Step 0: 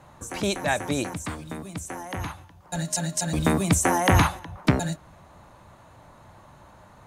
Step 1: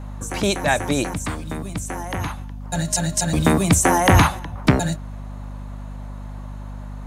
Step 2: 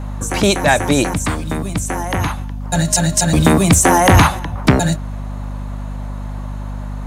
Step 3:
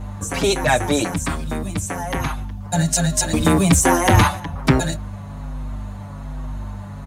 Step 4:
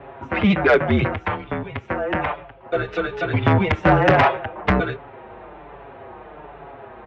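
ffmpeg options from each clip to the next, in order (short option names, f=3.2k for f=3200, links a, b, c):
-filter_complex "[0:a]asplit=2[a][b];[b]asoftclip=type=hard:threshold=-15dB,volume=-8dB[c];[a][c]amix=inputs=2:normalize=0,aeval=exprs='val(0)+0.02*(sin(2*PI*50*n/s)+sin(2*PI*2*50*n/s)/2+sin(2*PI*3*50*n/s)/3+sin(2*PI*4*50*n/s)/4+sin(2*PI*5*50*n/s)/5)':c=same,volume=2.5dB"
-filter_complex "[0:a]asplit=2[a][b];[b]alimiter=limit=-9.5dB:level=0:latency=1:release=250,volume=-2dB[c];[a][c]amix=inputs=2:normalize=0,asoftclip=type=tanh:threshold=-3dB,volume=2.5dB"
-filter_complex "[0:a]asplit=2[a][b];[b]adelay=6.2,afreqshift=-1.2[c];[a][c]amix=inputs=2:normalize=1,volume=-1dB"
-af "highpass=f=260:t=q:w=0.5412,highpass=f=260:t=q:w=1.307,lowpass=f=3k:t=q:w=0.5176,lowpass=f=3k:t=q:w=0.7071,lowpass=f=3k:t=q:w=1.932,afreqshift=-200,acontrast=85,highpass=79,volume=-3dB"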